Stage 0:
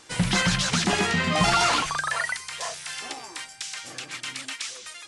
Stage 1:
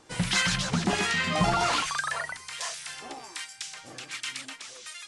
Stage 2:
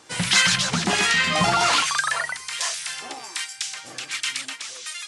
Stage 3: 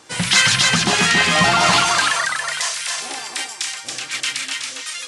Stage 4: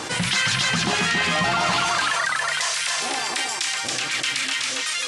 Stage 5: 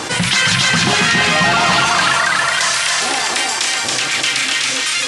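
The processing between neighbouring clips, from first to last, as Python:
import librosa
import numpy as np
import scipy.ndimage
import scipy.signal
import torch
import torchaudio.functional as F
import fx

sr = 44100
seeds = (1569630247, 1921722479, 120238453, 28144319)

y1 = fx.harmonic_tremolo(x, sr, hz=1.3, depth_pct=70, crossover_hz=1100.0)
y2 = scipy.signal.sosfilt(scipy.signal.butter(2, 77.0, 'highpass', fs=sr, output='sos'), y1)
y2 = fx.tilt_shelf(y2, sr, db=-4.0, hz=940.0)
y2 = y2 * librosa.db_to_amplitude(5.0)
y3 = fx.echo_feedback(y2, sr, ms=278, feedback_pct=18, wet_db=-4.0)
y3 = y3 * librosa.db_to_amplitude(3.5)
y4 = fx.high_shelf(y3, sr, hz=5700.0, db=-6.0)
y4 = fx.env_flatten(y4, sr, amount_pct=70)
y4 = y4 * librosa.db_to_amplitude(-7.5)
y5 = fx.echo_feedback(y4, sr, ms=316, feedback_pct=54, wet_db=-8)
y5 = y5 * librosa.db_to_amplitude(7.0)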